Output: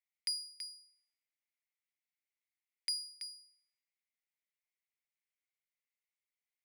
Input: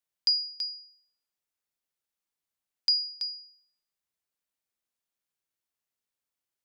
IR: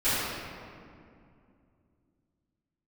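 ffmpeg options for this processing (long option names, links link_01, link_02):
-af "aeval=exprs='max(val(0),0)':channel_layout=same,highpass=frequency=2100:width_type=q:width=7.3,volume=-8dB"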